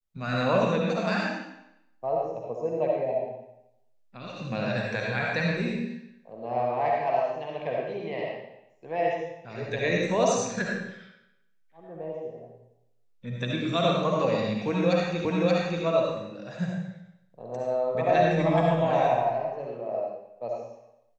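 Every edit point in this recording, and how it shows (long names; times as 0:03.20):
0:15.25: the same again, the last 0.58 s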